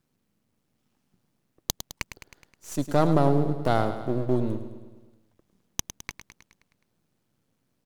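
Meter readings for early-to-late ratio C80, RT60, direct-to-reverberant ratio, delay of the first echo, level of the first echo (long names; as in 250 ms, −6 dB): no reverb audible, no reverb audible, no reverb audible, 105 ms, −11.0 dB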